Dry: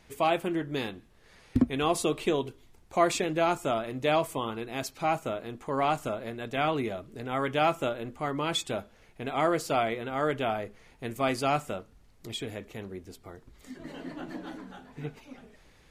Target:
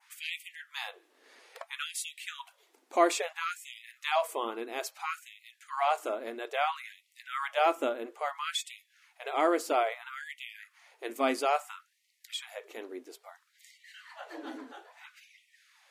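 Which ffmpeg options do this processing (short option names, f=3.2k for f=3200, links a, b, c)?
-af "adynamicequalizer=threshold=0.00398:dfrequency=4100:dqfactor=0.8:tfrequency=4100:tqfactor=0.8:attack=5:release=100:ratio=0.375:range=3:mode=cutabove:tftype=bell,afftfilt=real='re*gte(b*sr/1024,220*pow(1900/220,0.5+0.5*sin(2*PI*0.6*pts/sr)))':imag='im*gte(b*sr/1024,220*pow(1900/220,0.5+0.5*sin(2*PI*0.6*pts/sr)))':win_size=1024:overlap=0.75"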